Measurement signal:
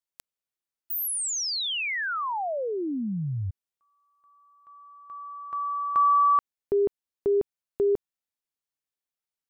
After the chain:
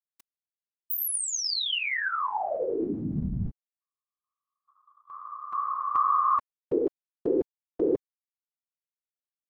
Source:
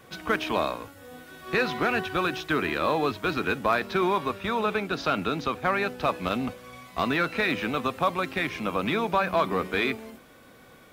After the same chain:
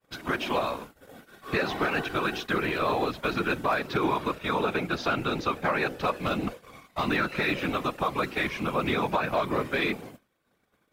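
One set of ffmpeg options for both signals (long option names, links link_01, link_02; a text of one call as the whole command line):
ffmpeg -i in.wav -af "afftfilt=real='hypot(re,im)*cos(2*PI*random(0))':imag='hypot(re,im)*sin(2*PI*random(1))':win_size=512:overlap=0.75,agate=range=-33dB:threshold=-48dB:ratio=3:release=61:detection=peak,alimiter=limit=-21.5dB:level=0:latency=1:release=144,volume=6dB" out.wav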